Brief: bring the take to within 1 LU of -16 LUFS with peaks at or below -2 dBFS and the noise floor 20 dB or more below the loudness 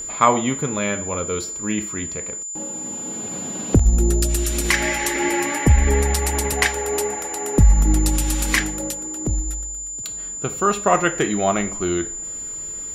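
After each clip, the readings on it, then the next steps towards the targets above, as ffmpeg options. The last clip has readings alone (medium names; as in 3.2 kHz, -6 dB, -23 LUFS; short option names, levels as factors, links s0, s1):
steady tone 7.1 kHz; tone level -28 dBFS; loudness -21.0 LUFS; peak level -1.5 dBFS; loudness target -16.0 LUFS
-> -af "bandreject=f=7100:w=30"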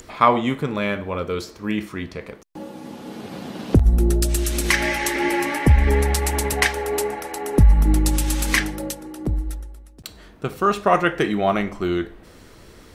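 steady tone not found; loudness -21.0 LUFS; peak level -2.0 dBFS; loudness target -16.0 LUFS
-> -af "volume=1.78,alimiter=limit=0.794:level=0:latency=1"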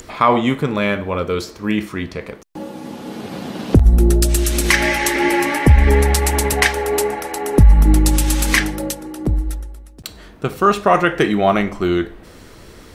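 loudness -16.5 LUFS; peak level -2.0 dBFS; noise floor -41 dBFS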